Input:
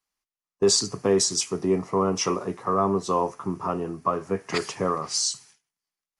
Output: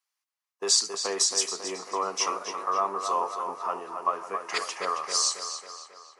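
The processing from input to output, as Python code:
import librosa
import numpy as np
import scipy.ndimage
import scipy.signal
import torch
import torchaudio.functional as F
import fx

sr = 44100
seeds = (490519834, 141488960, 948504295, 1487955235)

y = scipy.signal.sosfilt(scipy.signal.butter(2, 800.0, 'highpass', fs=sr, output='sos'), x)
y = fx.echo_tape(y, sr, ms=272, feedback_pct=59, wet_db=-6.0, lp_hz=4100.0, drive_db=5.0, wow_cents=14)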